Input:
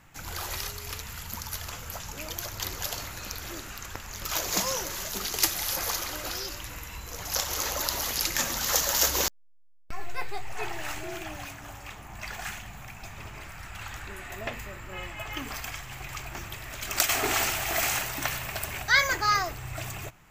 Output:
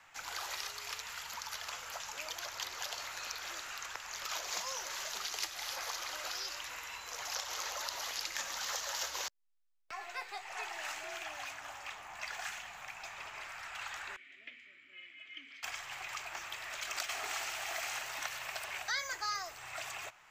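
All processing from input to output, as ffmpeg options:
-filter_complex "[0:a]asettb=1/sr,asplit=3[a][b][c];[a]atrim=end=14.164[d];[b]atrim=start=14.16:end=15.63,asetpts=PTS-STARTPTS,afade=t=in:d=0.004:c=qsin,afade=t=out:st=1.466:d=0.004:c=qsin,asplit=3[e][f][g];[e]bandpass=f=270:t=q:w=8,volume=0dB[h];[f]bandpass=f=2.29k:t=q:w=8,volume=-6dB[i];[g]bandpass=f=3.01k:t=q:w=8,volume=-9dB[j];[h][i][j]amix=inputs=3:normalize=0,acompressor=mode=upward:threshold=-54dB:ratio=2.5:attack=3.2:release=140:knee=2.83:detection=peak[k];[c]atrim=start=15.626[l];[d][k]acrossfade=d=0.004:c1=hsin:c2=qsin[m];[m][l]acrossfade=d=0.004:c1=qsin:c2=hsin,acrossover=split=150|510|5200[n][o][p][q];[n]acompressor=threshold=-46dB:ratio=4[r];[o]acompressor=threshold=-49dB:ratio=4[s];[p]acompressor=threshold=-39dB:ratio=4[t];[q]acompressor=threshold=-39dB:ratio=4[u];[r][s][t][u]amix=inputs=4:normalize=0,acrossover=split=570 7300:gain=0.0891 1 0.224[v][w][x];[v][w][x]amix=inputs=3:normalize=0"

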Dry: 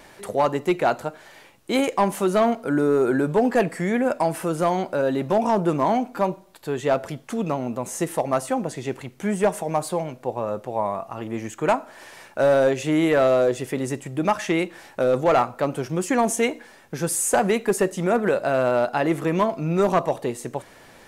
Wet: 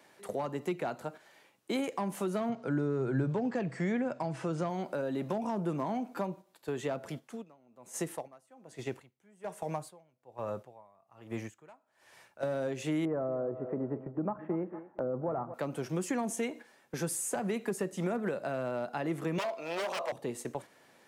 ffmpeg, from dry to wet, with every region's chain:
-filter_complex "[0:a]asettb=1/sr,asplit=3[a][b][c];[a]atrim=end=2.494[d];[b]atrim=start=2.49:end=4.7,asetpts=PTS-STARTPTS,afade=t=in:d=0.004:c=qsin,afade=t=out:st=2.206:d=0.004:c=qsin,lowpass=f=7k:w=0.5412,lowpass=f=7k:w=1.3066,equalizer=f=130:t=o:w=0.25:g=14.5[e];[c]atrim=start=4.696[f];[d][e]acrossfade=d=0.004:c1=hsin:c2=qsin[g];[g][f]acrossfade=d=0.004:c1=qsin:c2=hsin,asettb=1/sr,asplit=3[h][i][j];[h]atrim=end=7.194[k];[i]atrim=start=7.19:end=12.43,asetpts=PTS-STARTPTS,afade=t=in:d=0.004:c=qsin,afade=t=out:st=5.236:d=0.004:c=qsin,asubboost=boost=6.5:cutoff=97,aeval=exprs='val(0)*pow(10,-23*(0.5-0.5*cos(2*PI*1.2*n/s))/20)':c=same[l];[j]atrim=start=12.426[m];[k][l]acrossfade=d=0.004:c1=hsin:c2=qsin[n];[n][m]acrossfade=d=0.004:c1=qsin:c2=hsin,asettb=1/sr,asplit=3[o][p][q];[o]atrim=end=13.054[r];[p]atrim=start=13.05:end=15.54,asetpts=PTS-STARTPTS,afade=t=in:d=0.004:c=qsin,afade=t=out:st=2.486:d=0.004:c=qsin,lowpass=f=1.2k:w=0.5412,lowpass=f=1.2k:w=1.3066,aecho=1:1:229|458|687:0.178|0.0605|0.0206,atrim=end_sample=109809[s];[q]atrim=start=15.536[t];[r][s]acrossfade=d=0.004:c1=hsin:c2=qsin[u];[u][t]acrossfade=d=0.004:c1=qsin:c2=hsin,asettb=1/sr,asplit=3[v][w][x];[v]atrim=end=19.384[y];[w]atrim=start=19.38:end=20.12,asetpts=PTS-STARTPTS,afade=t=in:d=0.004:c=qsin,afade=t=out:st=0.736:d=0.004:c=qsin,equalizer=f=3k:w=0.41:g=11,aeval=exprs='0.15*(abs(mod(val(0)/0.15+3,4)-2)-1)':c=same,highpass=f=560:t=q:w=2.7[z];[x]atrim=start=20.116[aa];[y][z]acrossfade=d=0.004:c1=hsin:c2=qsin[ab];[ab][aa]acrossfade=d=0.004:c1=qsin:c2=hsin,highpass=150,agate=range=-8dB:threshold=-35dB:ratio=16:detection=peak,acrossover=split=210[ac][ad];[ad]acompressor=threshold=-28dB:ratio=6[ae];[ac][ae]amix=inputs=2:normalize=0,volume=-5dB"

